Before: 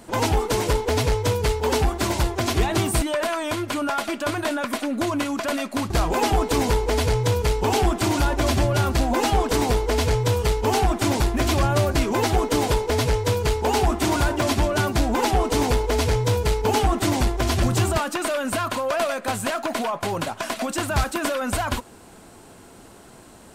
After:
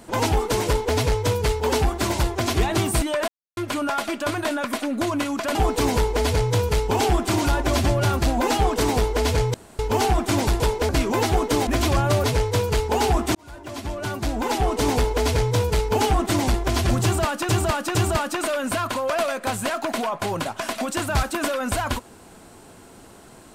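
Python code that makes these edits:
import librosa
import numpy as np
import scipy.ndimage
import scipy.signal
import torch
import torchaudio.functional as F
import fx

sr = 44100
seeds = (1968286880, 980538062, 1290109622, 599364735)

y = fx.edit(x, sr, fx.silence(start_s=3.28, length_s=0.29),
    fx.cut(start_s=5.55, length_s=0.73),
    fx.room_tone_fill(start_s=10.27, length_s=0.25),
    fx.swap(start_s=11.33, length_s=0.57, other_s=12.68, other_length_s=0.29),
    fx.fade_in_span(start_s=14.08, length_s=1.54),
    fx.repeat(start_s=17.76, length_s=0.46, count=3), tone=tone)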